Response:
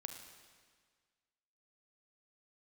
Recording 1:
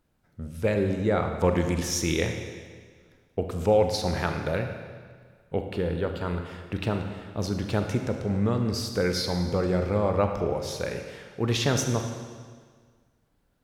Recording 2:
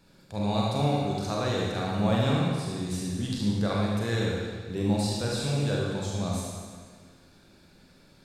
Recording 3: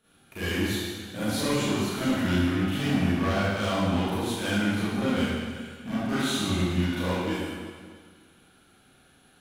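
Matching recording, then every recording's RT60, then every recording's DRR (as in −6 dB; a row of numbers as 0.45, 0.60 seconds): 1; 1.7, 1.7, 1.7 seconds; 5.0, −4.0, −13.0 decibels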